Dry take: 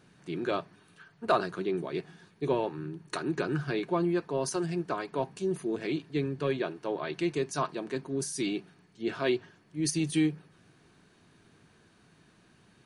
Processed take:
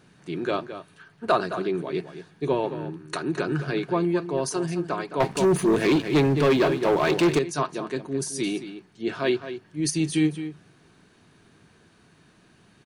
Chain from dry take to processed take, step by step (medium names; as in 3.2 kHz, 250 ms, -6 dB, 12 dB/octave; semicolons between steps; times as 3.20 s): echo from a far wall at 37 m, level -11 dB; 5.20–7.39 s: waveshaping leveller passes 3; trim +4 dB